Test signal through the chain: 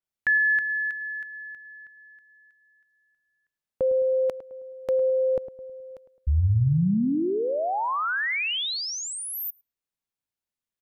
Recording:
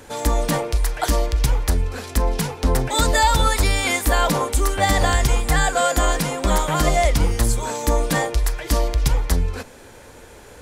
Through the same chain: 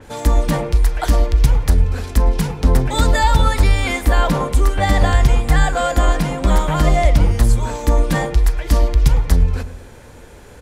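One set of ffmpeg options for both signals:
-filter_complex "[0:a]bass=f=250:g=6,treble=f=4000:g=-2,asplit=2[s0][s1];[s1]adelay=106,lowpass=f=1100:p=1,volume=0.266,asplit=2[s2][s3];[s3]adelay=106,lowpass=f=1100:p=1,volume=0.46,asplit=2[s4][s5];[s5]adelay=106,lowpass=f=1100:p=1,volume=0.46,asplit=2[s6][s7];[s7]adelay=106,lowpass=f=1100:p=1,volume=0.46,asplit=2[s8][s9];[s9]adelay=106,lowpass=f=1100:p=1,volume=0.46[s10];[s0][s2][s4][s6][s8][s10]amix=inputs=6:normalize=0,adynamicequalizer=threshold=0.0126:dfrequency=4600:dqfactor=0.7:tfrequency=4600:tqfactor=0.7:attack=5:release=100:ratio=0.375:range=3:mode=cutabove:tftype=highshelf"

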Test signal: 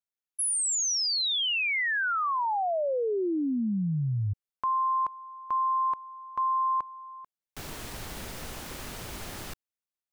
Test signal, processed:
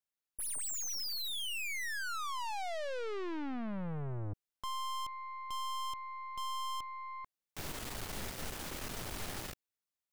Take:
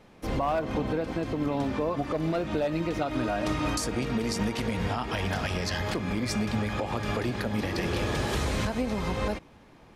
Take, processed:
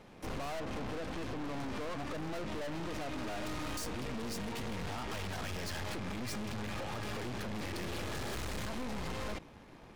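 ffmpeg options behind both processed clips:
-af "aeval=exprs='(tanh(126*val(0)+0.75)-tanh(0.75))/126':c=same,volume=1.5"

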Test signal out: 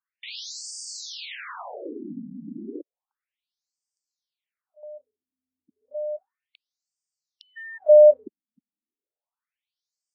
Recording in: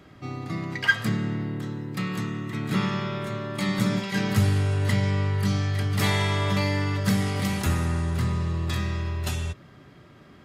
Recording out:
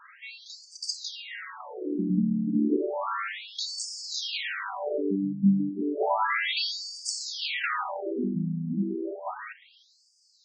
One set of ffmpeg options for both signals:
-af "asoftclip=type=tanh:threshold=0.237,lowshelf=f=150:t=q:w=1.5:g=-13,afftfilt=real='re*between(b*sr/1024,200*pow(6500/200,0.5+0.5*sin(2*PI*0.32*pts/sr))/1.41,200*pow(6500/200,0.5+0.5*sin(2*PI*0.32*pts/sr))*1.41)':imag='im*between(b*sr/1024,200*pow(6500/200,0.5+0.5*sin(2*PI*0.32*pts/sr))/1.41,200*pow(6500/200,0.5+0.5*sin(2*PI*0.32*pts/sr))*1.41)':win_size=1024:overlap=0.75,volume=2.66"

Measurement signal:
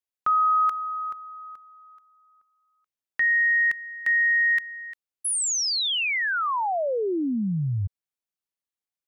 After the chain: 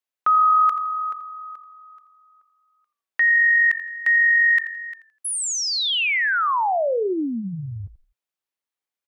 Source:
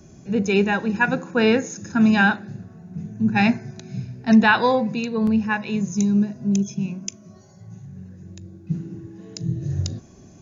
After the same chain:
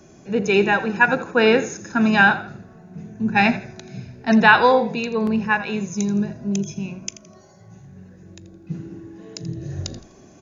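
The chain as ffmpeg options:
-filter_complex "[0:a]bass=f=250:g=-11,treble=f=4000:g=-5,asplit=4[s0][s1][s2][s3];[s1]adelay=83,afreqshift=-45,volume=0.188[s4];[s2]adelay=166,afreqshift=-90,volume=0.0582[s5];[s3]adelay=249,afreqshift=-135,volume=0.0182[s6];[s0][s4][s5][s6]amix=inputs=4:normalize=0,volume=1.68"

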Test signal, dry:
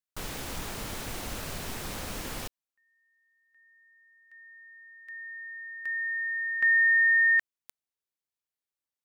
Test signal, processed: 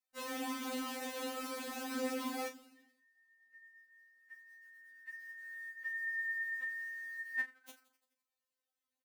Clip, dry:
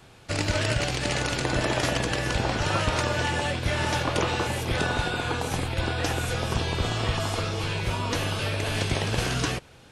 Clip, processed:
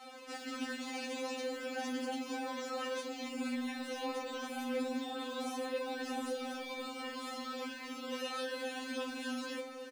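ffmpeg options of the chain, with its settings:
-filter_complex "[0:a]acrossover=split=450|4000[s0][s1][s2];[s1]acompressor=threshold=0.0447:ratio=3:attack=0.28:release=39:knee=2.83:detection=peak[s3];[s0][s3][s2]amix=inputs=3:normalize=0,alimiter=limit=0.0891:level=0:latency=1:release=132,adynamicequalizer=threshold=0.00224:dfrequency=310:dqfactor=3.4:tfrequency=310:tqfactor=3.4:attack=5:release=100:ratio=0.375:range=3:mode=boostabove:tftype=bell,flanger=delay=5.5:depth=4.5:regen=-6:speed=0.36:shape=sinusoidal,areverse,acompressor=threshold=0.00631:ratio=4:attack=12:release=133:knee=1:detection=peak,areverse,highshelf=f=2200:g=-7.5,asplit=2[s4][s5];[s5]asplit=6[s6][s7][s8][s9][s10][s11];[s6]adelay=85,afreqshift=-76,volume=0.133[s12];[s7]adelay=170,afreqshift=-152,volume=0.0822[s13];[s8]adelay=255,afreqshift=-228,volume=0.0513[s14];[s9]adelay=340,afreqshift=-304,volume=0.0316[s15];[s10]adelay=425,afreqshift=-380,volume=0.0197[s16];[s11]adelay=510,afreqshift=-456,volume=0.0122[s17];[s12][s13][s14][s15][s16][s17]amix=inputs=6:normalize=0[s18];[s4][s18]amix=inputs=2:normalize=0,acrusher=bits=8:mode=log:mix=0:aa=0.000001,highpass=f=84:w=0.5412,highpass=f=84:w=1.3066,asplit=2[s19][s20];[s20]adelay=37,volume=0.316[s21];[s19][s21]amix=inputs=2:normalize=0,afftfilt=real='re*3.46*eq(mod(b,12),0)':imag='im*3.46*eq(mod(b,12),0)':win_size=2048:overlap=0.75,volume=3.55"

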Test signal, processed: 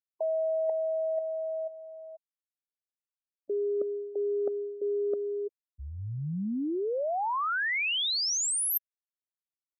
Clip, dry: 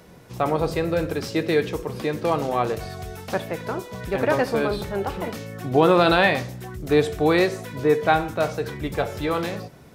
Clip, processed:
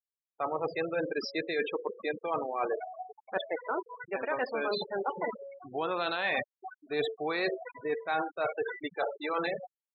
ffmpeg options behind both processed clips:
-af "highpass=f=940:p=1,afftfilt=real='re*gte(hypot(re,im),0.0447)':imag='im*gte(hypot(re,im),0.0447)':win_size=1024:overlap=0.75,areverse,acompressor=threshold=0.0178:ratio=8,areverse,volume=2.11"

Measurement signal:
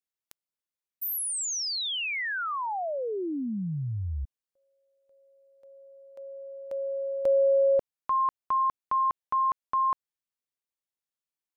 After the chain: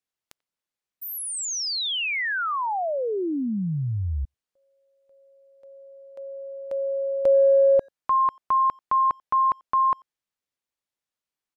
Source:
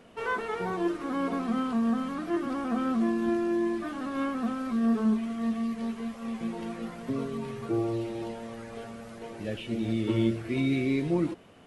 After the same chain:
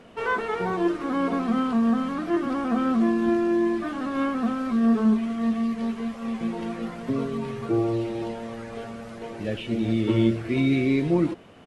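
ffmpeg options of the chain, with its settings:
-filter_complex "[0:a]highshelf=f=9300:g=-10,asplit=2[s0][s1];[s1]adelay=90,highpass=300,lowpass=3400,asoftclip=type=hard:threshold=0.0708,volume=0.0316[s2];[s0][s2]amix=inputs=2:normalize=0,volume=1.78"

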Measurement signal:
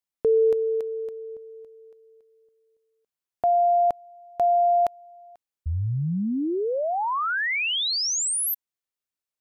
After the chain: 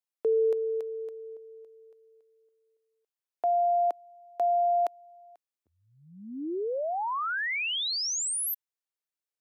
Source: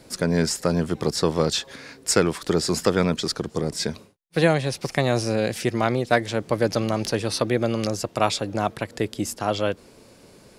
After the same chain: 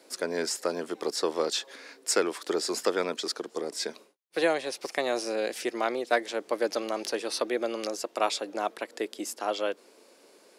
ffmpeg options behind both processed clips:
-af "highpass=f=310:w=0.5412,highpass=f=310:w=1.3066,volume=0.562"

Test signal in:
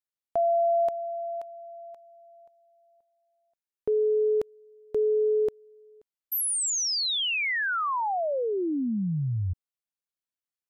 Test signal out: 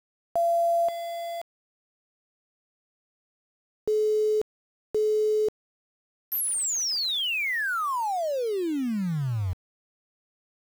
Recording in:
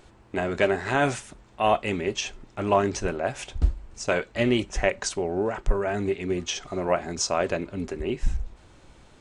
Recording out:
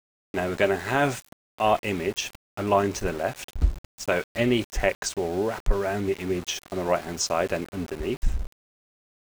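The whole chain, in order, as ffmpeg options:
-af "aeval=exprs='val(0)*gte(abs(val(0)),0.0158)':c=same"

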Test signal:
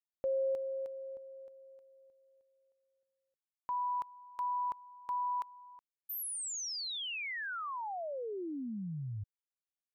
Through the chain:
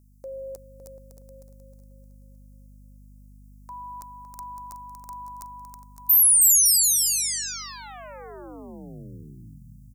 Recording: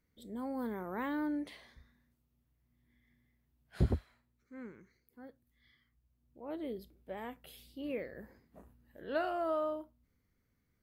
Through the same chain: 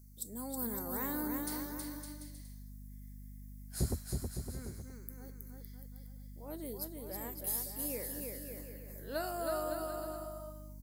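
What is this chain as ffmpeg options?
-af "aeval=exprs='val(0)+0.00282*(sin(2*PI*50*n/s)+sin(2*PI*2*50*n/s)/2+sin(2*PI*3*50*n/s)/3+sin(2*PI*4*50*n/s)/4+sin(2*PI*5*50*n/s)/5)':c=same,aexciter=amount=14:drive=6.9:freq=4900,aecho=1:1:320|560|740|875|976.2:0.631|0.398|0.251|0.158|0.1,volume=0.631"

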